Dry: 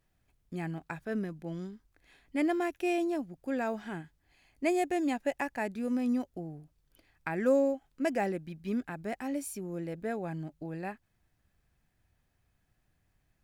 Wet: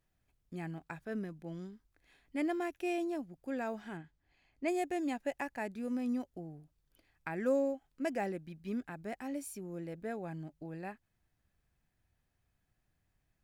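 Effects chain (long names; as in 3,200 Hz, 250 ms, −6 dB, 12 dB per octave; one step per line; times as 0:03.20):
0:03.97–0:04.68: high-frequency loss of the air 92 metres
level −5 dB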